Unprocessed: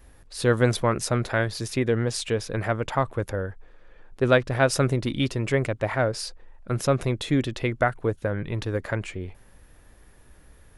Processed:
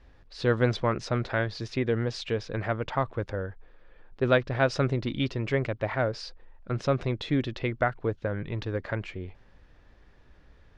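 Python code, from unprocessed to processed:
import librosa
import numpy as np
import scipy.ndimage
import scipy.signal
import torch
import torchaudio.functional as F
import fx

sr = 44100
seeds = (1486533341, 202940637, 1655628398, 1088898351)

y = scipy.signal.sosfilt(scipy.signal.butter(4, 5100.0, 'lowpass', fs=sr, output='sos'), x)
y = y * 10.0 ** (-3.5 / 20.0)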